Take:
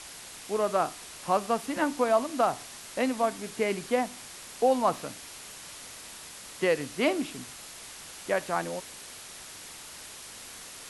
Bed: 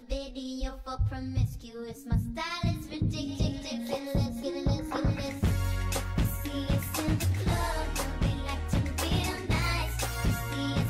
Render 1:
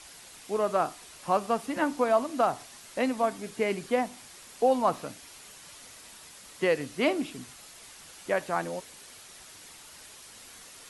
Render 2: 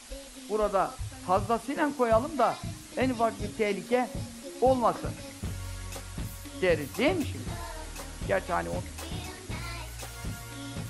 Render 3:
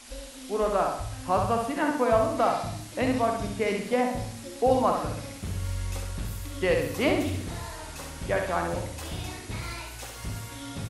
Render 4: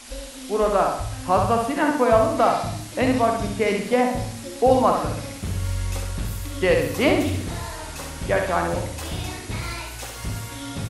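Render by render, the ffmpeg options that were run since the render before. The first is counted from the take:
-af "afftdn=nr=6:nf=-45"
-filter_complex "[1:a]volume=-9dB[a];[0:a][a]amix=inputs=2:normalize=0"
-filter_complex "[0:a]asplit=2[a][b];[b]adelay=45,volume=-11.5dB[c];[a][c]amix=inputs=2:normalize=0,aecho=1:1:65|130|195|260|325|390:0.596|0.292|0.143|0.0701|0.0343|0.0168"
-af "volume=5.5dB"

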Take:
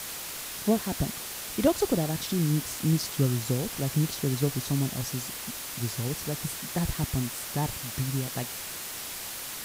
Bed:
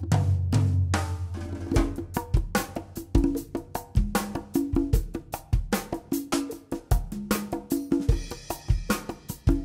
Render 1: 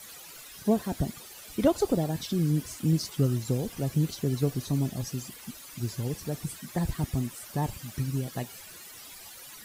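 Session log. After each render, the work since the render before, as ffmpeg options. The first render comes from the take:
-af "afftdn=nr=14:nf=-38"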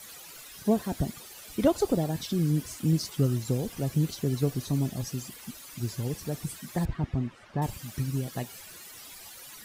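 -filter_complex "[0:a]asettb=1/sr,asplit=3[a][b][c];[a]atrim=end=6.854[d];[b]atrim=start=6.85:end=7.62,asetpts=PTS-STARTPTS,afade=t=in:d=0.004:c=qsin,afade=t=out:st=0.766:d=0.004:c=qsin,lowpass=2.4k[e];[c]atrim=start=7.616[f];[d][e]acrossfade=d=0.004:c1=hsin:c2=qsin[g];[g][f]acrossfade=d=0.004:c1=qsin:c2=hsin"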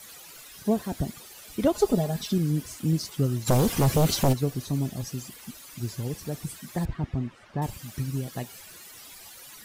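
-filter_complex "[0:a]asettb=1/sr,asplit=3[a][b][c];[a]atrim=end=1.744[d];[b]atrim=start=1.74:end=2.38,asetpts=PTS-STARTPTS,afade=t=in:d=0.004:c=qsin,afade=t=out:st=0.636:d=0.004:c=qsin,aecho=1:1:4.8:0.79,atrim=end_sample=28224[e];[c]atrim=start=2.376[f];[d][e]acrossfade=d=0.004:c1=hsin:c2=qsin[g];[g][f]acrossfade=d=0.004:c1=qsin:c2=hsin,asplit=3[h][i][j];[h]afade=t=out:st=3.46:d=0.02[k];[i]aeval=exprs='0.168*sin(PI/2*2.82*val(0)/0.168)':c=same,afade=t=in:st=3.46:d=0.02,afade=t=out:st=4.32:d=0.02[l];[j]afade=t=in:st=4.32:d=0.02[m];[k][l][m]amix=inputs=3:normalize=0"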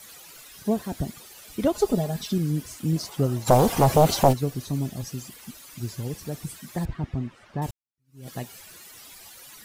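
-filter_complex "[0:a]asettb=1/sr,asplit=3[a][b][c];[a]atrim=end=2.964[d];[b]atrim=start=2.96:end=4.31,asetpts=PTS-STARTPTS,afade=t=in:d=0.004:c=qsin,afade=t=out:st=1.346:d=0.004:c=qsin,equalizer=f=750:w=1.1:g=11[e];[c]atrim=start=4.306[f];[d][e]acrossfade=d=0.004:c1=hsin:c2=qsin[g];[g][f]acrossfade=d=0.004:c1=qsin:c2=hsin,asplit=2[h][i];[h]atrim=end=7.71,asetpts=PTS-STARTPTS,afade=t=out:st=7.706:d=0.004:c=hsin[j];[i]atrim=start=7.71,asetpts=PTS-STARTPTS,afade=t=in:d=0.57:c=exp[k];[j][k]concat=n=2:v=0:a=1"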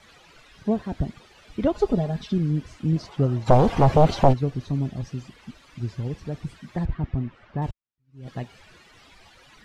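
-af "lowpass=3.2k,lowshelf=f=82:g=9.5"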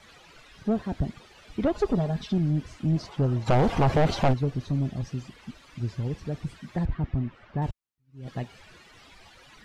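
-af "asoftclip=type=tanh:threshold=-16.5dB"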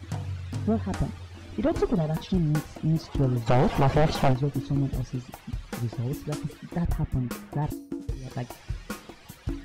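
-filter_complex "[1:a]volume=-10dB[a];[0:a][a]amix=inputs=2:normalize=0"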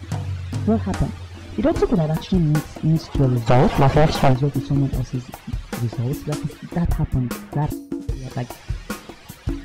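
-af "volume=6.5dB"

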